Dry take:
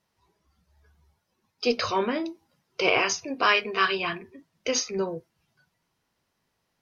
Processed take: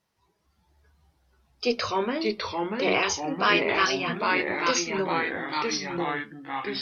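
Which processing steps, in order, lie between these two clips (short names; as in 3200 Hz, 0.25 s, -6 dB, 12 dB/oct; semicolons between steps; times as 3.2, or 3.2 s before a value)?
2.3–2.94 bell 5500 Hz -8 dB 2.4 oct; echoes that change speed 0.384 s, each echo -2 st, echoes 3; gain -1 dB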